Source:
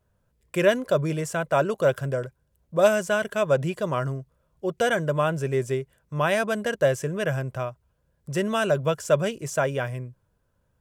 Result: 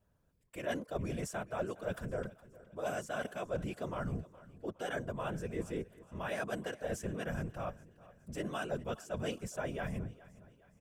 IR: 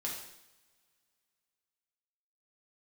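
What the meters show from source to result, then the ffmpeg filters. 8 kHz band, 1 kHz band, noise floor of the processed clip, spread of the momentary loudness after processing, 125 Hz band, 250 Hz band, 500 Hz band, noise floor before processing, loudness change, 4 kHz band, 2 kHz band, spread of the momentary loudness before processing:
-12.5 dB, -13.5 dB, -71 dBFS, 9 LU, -13.0 dB, -11.0 dB, -16.0 dB, -70 dBFS, -14.5 dB, -14.0 dB, -14.5 dB, 11 LU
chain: -af "areverse,acompressor=threshold=-30dB:ratio=8,areverse,afftfilt=real='hypot(re,im)*cos(2*PI*random(0))':imag='hypot(re,im)*sin(2*PI*random(1))':win_size=512:overlap=0.75,aecho=1:1:415|830|1245:0.106|0.0455|0.0196,volume=1dB"

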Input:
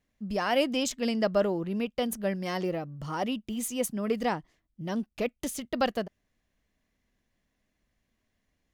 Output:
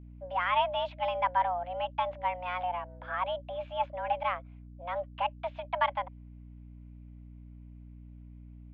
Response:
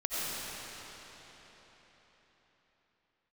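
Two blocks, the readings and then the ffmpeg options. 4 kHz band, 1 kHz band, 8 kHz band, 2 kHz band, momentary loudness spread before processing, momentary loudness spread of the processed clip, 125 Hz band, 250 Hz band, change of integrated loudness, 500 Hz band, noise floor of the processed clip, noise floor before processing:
-4.5 dB, +6.0 dB, under -40 dB, 0.0 dB, 10 LU, 23 LU, -6.0 dB, -21.0 dB, -2.0 dB, -5.0 dB, -49 dBFS, -79 dBFS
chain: -af "highpass=f=240:t=q:w=0.5412,highpass=f=240:t=q:w=1.307,lowpass=f=2.7k:t=q:w=0.5176,lowpass=f=2.7k:t=q:w=0.7071,lowpass=f=2.7k:t=q:w=1.932,afreqshift=360,adynamicequalizer=threshold=0.0112:dfrequency=1300:dqfactor=1:tfrequency=1300:tqfactor=1:attack=5:release=100:ratio=0.375:range=2.5:mode=cutabove:tftype=bell,aeval=exprs='val(0)+0.00447*(sin(2*PI*60*n/s)+sin(2*PI*2*60*n/s)/2+sin(2*PI*3*60*n/s)/3+sin(2*PI*4*60*n/s)/4+sin(2*PI*5*60*n/s)/5)':c=same"

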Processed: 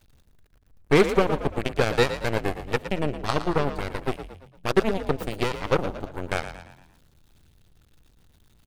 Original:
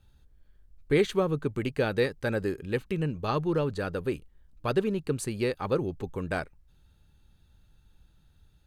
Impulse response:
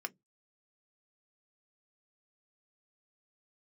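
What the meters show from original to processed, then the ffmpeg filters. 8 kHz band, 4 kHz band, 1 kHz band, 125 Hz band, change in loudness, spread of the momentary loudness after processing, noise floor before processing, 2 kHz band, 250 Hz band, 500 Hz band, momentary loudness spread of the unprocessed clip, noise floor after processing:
+3.0 dB, +7.5 dB, +7.5 dB, +2.0 dB, +4.0 dB, 12 LU, -62 dBFS, +6.0 dB, +2.5 dB, +3.5 dB, 8 LU, -61 dBFS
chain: -filter_complex "[0:a]aeval=exprs='val(0)+0.5*0.0106*sgn(val(0))':c=same,aeval=exprs='0.266*(cos(1*acos(clip(val(0)/0.266,-1,1)))-cos(1*PI/2))+0.0422*(cos(7*acos(clip(val(0)/0.266,-1,1)))-cos(7*PI/2))+0.0237*(cos(8*acos(clip(val(0)/0.266,-1,1)))-cos(8*PI/2))':c=same,asplit=6[a][b][c][d][e][f];[b]adelay=114,afreqshift=43,volume=-11dB[g];[c]adelay=228,afreqshift=86,volume=-17.7dB[h];[d]adelay=342,afreqshift=129,volume=-24.5dB[i];[e]adelay=456,afreqshift=172,volume=-31.2dB[j];[f]adelay=570,afreqshift=215,volume=-38dB[k];[a][g][h][i][j][k]amix=inputs=6:normalize=0,volume=4.5dB"

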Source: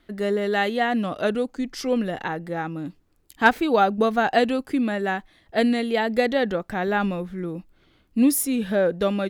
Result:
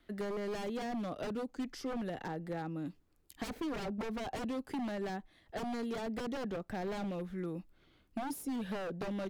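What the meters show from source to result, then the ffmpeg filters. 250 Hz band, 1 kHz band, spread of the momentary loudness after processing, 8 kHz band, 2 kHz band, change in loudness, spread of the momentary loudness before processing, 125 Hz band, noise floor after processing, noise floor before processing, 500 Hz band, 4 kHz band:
-14.0 dB, -18.0 dB, 4 LU, -19.0 dB, -21.0 dB, -16.0 dB, 11 LU, -10.5 dB, -69 dBFS, -62 dBFS, -16.5 dB, -16.0 dB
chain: -filter_complex "[0:a]aeval=exprs='0.0891*(abs(mod(val(0)/0.0891+3,4)-2)-1)':c=same,acrossover=split=280|790[a][b][c];[a]acompressor=threshold=-33dB:ratio=4[d];[b]acompressor=threshold=-33dB:ratio=4[e];[c]acompressor=threshold=-41dB:ratio=4[f];[d][e][f]amix=inputs=3:normalize=0,volume=-7dB"

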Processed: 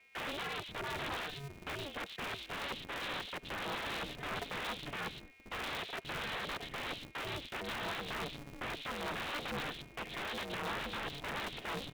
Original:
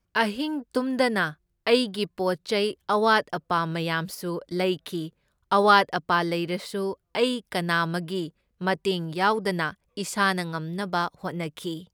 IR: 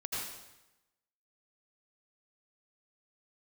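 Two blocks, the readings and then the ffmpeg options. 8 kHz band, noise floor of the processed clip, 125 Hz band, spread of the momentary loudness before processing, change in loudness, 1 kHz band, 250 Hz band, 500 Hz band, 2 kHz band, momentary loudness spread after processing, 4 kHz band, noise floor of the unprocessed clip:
-10.5 dB, -56 dBFS, -15.0 dB, 11 LU, -14.0 dB, -16.0 dB, -19.0 dB, -18.5 dB, -11.5 dB, 4 LU, -9.0 dB, -74 dBFS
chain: -filter_complex "[0:a]asplit=3[a][b][c];[a]bandpass=f=530:t=q:w=8,volume=0dB[d];[b]bandpass=f=1.84k:t=q:w=8,volume=-6dB[e];[c]bandpass=f=2.48k:t=q:w=8,volume=-9dB[f];[d][e][f]amix=inputs=3:normalize=0,equalizer=f=140:w=0.39:g=8.5,aecho=1:1:3:0.73,acompressor=threshold=-39dB:ratio=10,lowshelf=f=200:t=q:w=1.5:g=6,aphaser=in_gain=1:out_gain=1:delay=3.4:decay=0.42:speed=0.88:type=triangular,aresample=8000,aeval=exprs='(mod(168*val(0)+1,2)-1)/168':c=same,aresample=44100,aeval=exprs='val(0)+0.000282*sin(2*PI*2300*n/s)':c=same,acrossover=split=200|3100[g][h][i];[i]adelay=120[j];[g]adelay=530[k];[k][h][j]amix=inputs=3:normalize=0,asplit=2[l][m];[1:a]atrim=start_sample=2205,atrim=end_sample=4410[n];[m][n]afir=irnorm=-1:irlink=0,volume=-22.5dB[o];[l][o]amix=inputs=2:normalize=0,aeval=exprs='val(0)*sgn(sin(2*PI*140*n/s))':c=same,volume=11dB"

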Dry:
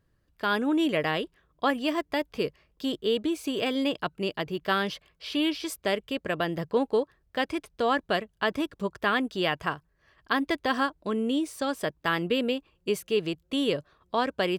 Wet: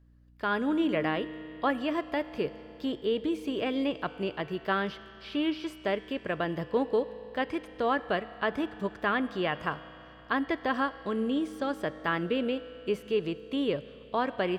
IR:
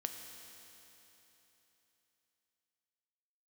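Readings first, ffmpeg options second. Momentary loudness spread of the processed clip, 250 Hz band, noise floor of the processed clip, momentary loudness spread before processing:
7 LU, -2.0 dB, -50 dBFS, 6 LU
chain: -filter_complex "[0:a]acrossover=split=2900[a][b];[b]acompressor=threshold=-47dB:ratio=4:attack=1:release=60[c];[a][c]amix=inputs=2:normalize=0,aeval=exprs='val(0)+0.00158*(sin(2*PI*60*n/s)+sin(2*PI*2*60*n/s)/2+sin(2*PI*3*60*n/s)/3+sin(2*PI*4*60*n/s)/4+sin(2*PI*5*60*n/s)/5)':c=same,asplit=2[d][e];[1:a]atrim=start_sample=2205,lowpass=6.1k[f];[e][f]afir=irnorm=-1:irlink=0,volume=-3dB[g];[d][g]amix=inputs=2:normalize=0,volume=-6dB"

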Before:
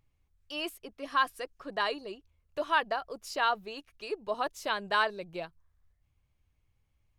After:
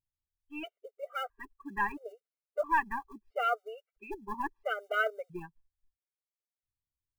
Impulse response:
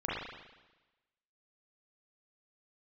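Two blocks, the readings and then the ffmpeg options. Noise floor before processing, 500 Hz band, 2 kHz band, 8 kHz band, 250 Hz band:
-75 dBFS, -2.0 dB, -2.0 dB, under -10 dB, -1.5 dB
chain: -af "aeval=exprs='0.2*(cos(1*acos(clip(val(0)/0.2,-1,1)))-cos(1*PI/2))+0.00141*(cos(4*acos(clip(val(0)/0.2,-1,1)))-cos(4*PI/2))+0.00141*(cos(5*acos(clip(val(0)/0.2,-1,1)))-cos(5*PI/2))+0.01*(cos(8*acos(clip(val(0)/0.2,-1,1)))-cos(8*PI/2))':c=same,lowpass=f=2.5k:w=0.5412,lowpass=f=2.5k:w=1.3066,afftdn=nr=24:nf=-41,acrusher=bits=8:mode=log:mix=0:aa=0.000001,afftfilt=real='re*gt(sin(2*PI*0.75*pts/sr)*(1-2*mod(floor(b*sr/1024/390),2)),0)':imag='im*gt(sin(2*PI*0.75*pts/sr)*(1-2*mod(floor(b*sr/1024/390),2)),0)':win_size=1024:overlap=0.75,volume=1.5dB"

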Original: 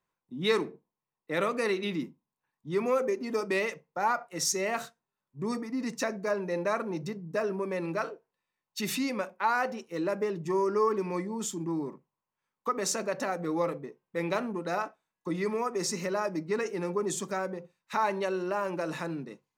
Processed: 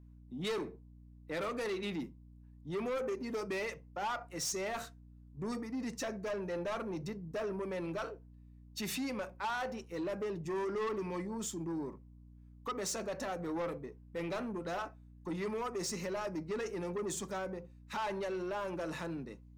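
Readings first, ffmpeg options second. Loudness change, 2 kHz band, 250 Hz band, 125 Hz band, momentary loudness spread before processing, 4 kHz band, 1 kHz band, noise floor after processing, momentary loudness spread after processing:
-7.5 dB, -8.0 dB, -6.0 dB, -5.0 dB, 9 LU, -6.0 dB, -8.5 dB, -56 dBFS, 11 LU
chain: -af "aeval=exprs='val(0)+0.00282*(sin(2*PI*60*n/s)+sin(2*PI*2*60*n/s)/2+sin(2*PI*3*60*n/s)/3+sin(2*PI*4*60*n/s)/4+sin(2*PI*5*60*n/s)/5)':c=same,asoftclip=type=tanh:threshold=-28.5dB,volume=-3.5dB"

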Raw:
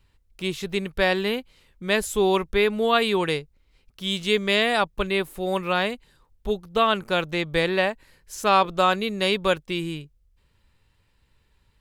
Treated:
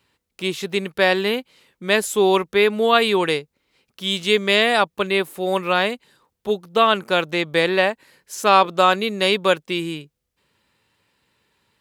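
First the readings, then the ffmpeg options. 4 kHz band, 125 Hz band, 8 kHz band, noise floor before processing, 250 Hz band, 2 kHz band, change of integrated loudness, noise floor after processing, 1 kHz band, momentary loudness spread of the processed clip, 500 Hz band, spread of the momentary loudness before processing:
+4.5 dB, +0.5 dB, +4.5 dB, -65 dBFS, +2.5 dB, +4.5 dB, +4.5 dB, -78 dBFS, +4.5 dB, 11 LU, +4.5 dB, 11 LU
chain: -af "highpass=200,volume=4.5dB"

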